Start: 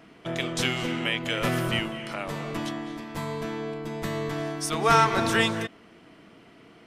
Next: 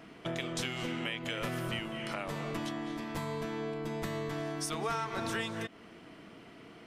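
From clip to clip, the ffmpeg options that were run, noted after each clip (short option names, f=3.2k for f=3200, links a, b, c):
-af "acompressor=threshold=-34dB:ratio=4"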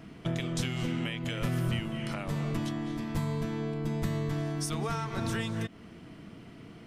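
-af "bass=f=250:g=13,treble=f=4k:g=3,volume=-1.5dB"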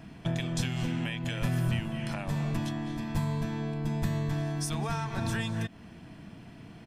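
-af "aecho=1:1:1.2:0.4"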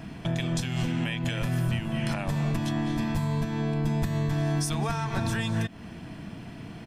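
-af "alimiter=level_in=1.5dB:limit=-24dB:level=0:latency=1:release=238,volume=-1.5dB,volume=7dB"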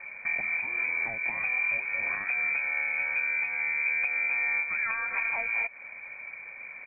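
-af "lowpass=f=2.1k:t=q:w=0.5098,lowpass=f=2.1k:t=q:w=0.6013,lowpass=f=2.1k:t=q:w=0.9,lowpass=f=2.1k:t=q:w=2.563,afreqshift=-2500,volume=-2dB"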